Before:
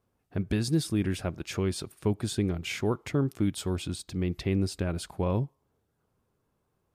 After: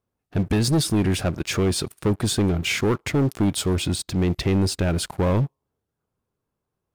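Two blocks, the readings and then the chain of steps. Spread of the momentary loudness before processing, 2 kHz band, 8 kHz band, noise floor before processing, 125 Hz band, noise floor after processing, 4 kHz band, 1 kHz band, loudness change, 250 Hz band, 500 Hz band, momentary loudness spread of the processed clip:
6 LU, +9.5 dB, +11.0 dB, −77 dBFS, +7.5 dB, −82 dBFS, +10.5 dB, +8.5 dB, +7.5 dB, +7.0 dB, +7.0 dB, 4 LU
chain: leveller curve on the samples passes 3

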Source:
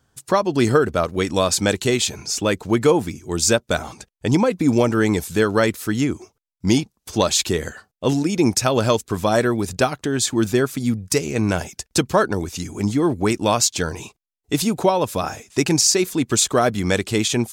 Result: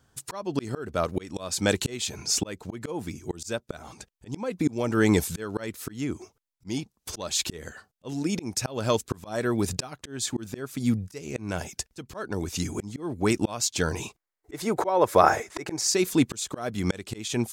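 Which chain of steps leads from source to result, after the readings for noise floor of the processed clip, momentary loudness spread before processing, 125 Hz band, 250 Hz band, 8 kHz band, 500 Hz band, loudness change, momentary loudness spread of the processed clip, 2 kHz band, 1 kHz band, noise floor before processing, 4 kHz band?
−76 dBFS, 8 LU, −8.5 dB, −8.5 dB, −8.5 dB, −9.0 dB, −8.0 dB, 14 LU, −8.5 dB, −6.0 dB, −74 dBFS, −9.0 dB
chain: gain on a spectral selection 0:14.17–0:15.89, 310–2,300 Hz +10 dB
volume swells 501 ms

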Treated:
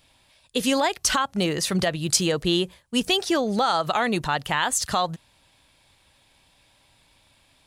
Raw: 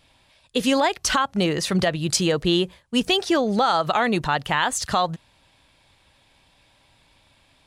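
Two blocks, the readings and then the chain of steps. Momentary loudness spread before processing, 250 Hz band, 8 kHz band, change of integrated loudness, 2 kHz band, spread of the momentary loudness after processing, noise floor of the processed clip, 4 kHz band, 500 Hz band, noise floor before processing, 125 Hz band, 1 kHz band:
5 LU, −2.5 dB, +2.5 dB, −1.5 dB, −2.0 dB, 5 LU, −61 dBFS, −0.5 dB, −2.5 dB, −60 dBFS, −2.5 dB, −2.5 dB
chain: high-shelf EQ 6,700 Hz +9 dB
level −2.5 dB

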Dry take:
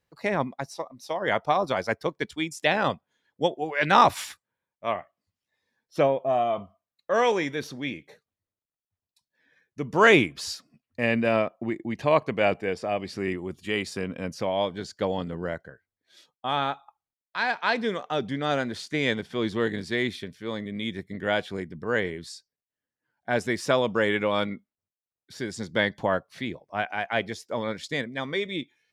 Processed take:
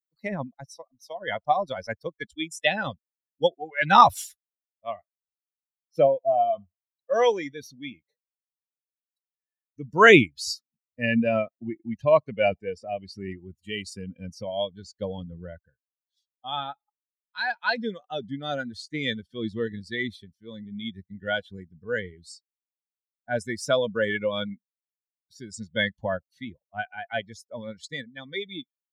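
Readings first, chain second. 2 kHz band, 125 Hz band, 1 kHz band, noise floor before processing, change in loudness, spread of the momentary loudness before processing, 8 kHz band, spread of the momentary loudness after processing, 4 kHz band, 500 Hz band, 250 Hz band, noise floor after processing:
+0.5 dB, −1.5 dB, +1.0 dB, below −85 dBFS, +1.5 dB, 13 LU, +0.5 dB, 19 LU, 0.0 dB, 0.0 dB, −1.5 dB, below −85 dBFS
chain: spectral dynamics exaggerated over time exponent 2
level +6 dB

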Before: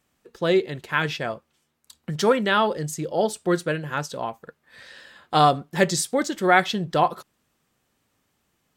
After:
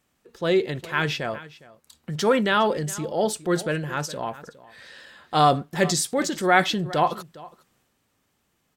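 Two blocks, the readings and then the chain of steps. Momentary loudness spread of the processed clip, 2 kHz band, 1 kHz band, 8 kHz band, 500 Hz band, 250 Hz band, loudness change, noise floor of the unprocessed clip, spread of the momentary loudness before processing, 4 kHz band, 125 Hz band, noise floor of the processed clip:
13 LU, −0.5 dB, −1.0 dB, +1.5 dB, −1.0 dB, 0.0 dB, −0.5 dB, −72 dBFS, 13 LU, +0.5 dB, +0.5 dB, −72 dBFS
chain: single-tap delay 410 ms −21.5 dB
transient designer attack −3 dB, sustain +4 dB

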